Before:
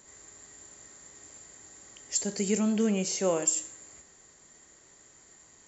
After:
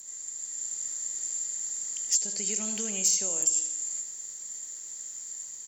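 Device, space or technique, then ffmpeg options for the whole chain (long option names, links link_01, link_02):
FM broadcast chain: -filter_complex "[0:a]asettb=1/sr,asplit=3[link_01][link_02][link_03];[link_01]atrim=end=2.324[link_04];[link_02]atrim=start=2.32:end=3.04,asetpts=PTS-STARTPTS,afade=type=in:duration=0.004:curve=qsin,afade=type=out:start_time=0.716:duration=0.004:curve=qsin,acrossover=split=4200[link_05][link_06];[link_06]acompressor=threshold=-45dB:ratio=4:attack=1:release=60[link_07];[link_05][link_07]amix=inputs=2:normalize=0[link_08];[link_03]atrim=start=3.036[link_09];[link_04][link_08]acrossfade=duration=0.004:curve1=hsin:curve2=qsin[link_10];[link_10][link_09]acrossfade=duration=0.004:curve1=qsin:curve2=hsin,highpass=65,aecho=1:1:77|154|231|308|385:0.224|0.105|0.0495|0.0232|0.0109,dynaudnorm=framelen=160:gausssize=7:maxgain=5dB,acrossover=split=480|5000[link_11][link_12][link_13];[link_11]acompressor=threshold=-30dB:ratio=4[link_14];[link_12]acompressor=threshold=-34dB:ratio=4[link_15];[link_13]acompressor=threshold=-34dB:ratio=4[link_16];[link_14][link_15][link_16]amix=inputs=3:normalize=0,aemphasis=mode=production:type=75fm,alimiter=limit=-14.5dB:level=0:latency=1:release=466,asoftclip=type=hard:threshold=-17.5dB,lowpass=frequency=15000:width=0.5412,lowpass=frequency=15000:width=1.3066,aemphasis=mode=production:type=75fm,volume=-8.5dB"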